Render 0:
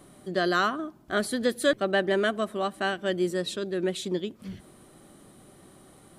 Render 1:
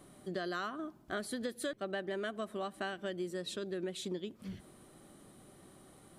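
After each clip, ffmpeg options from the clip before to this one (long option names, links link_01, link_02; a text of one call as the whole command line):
ffmpeg -i in.wav -af "acompressor=threshold=-30dB:ratio=6,volume=-5dB" out.wav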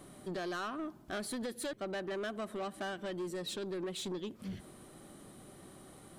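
ffmpeg -i in.wav -af "asoftclip=type=tanh:threshold=-38dB,volume=4dB" out.wav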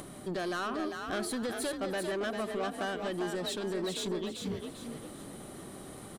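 ffmpeg -i in.wav -filter_complex "[0:a]acompressor=mode=upward:threshold=-45dB:ratio=2.5,asplit=2[link_01][link_02];[link_02]asplit=4[link_03][link_04][link_05][link_06];[link_03]adelay=397,afreqshift=43,volume=-5.5dB[link_07];[link_04]adelay=794,afreqshift=86,volume=-14.9dB[link_08];[link_05]adelay=1191,afreqshift=129,volume=-24.2dB[link_09];[link_06]adelay=1588,afreqshift=172,volume=-33.6dB[link_10];[link_07][link_08][link_09][link_10]amix=inputs=4:normalize=0[link_11];[link_01][link_11]amix=inputs=2:normalize=0,volume=4dB" out.wav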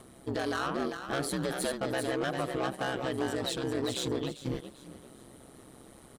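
ffmpeg -i in.wav -af "agate=range=-9dB:threshold=-38dB:ratio=16:detection=peak,aeval=exprs='val(0)*sin(2*PI*66*n/s)':channel_layout=same,volume=5dB" out.wav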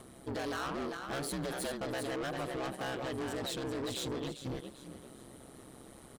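ffmpeg -i in.wav -af "asoftclip=type=tanh:threshold=-33dB" out.wav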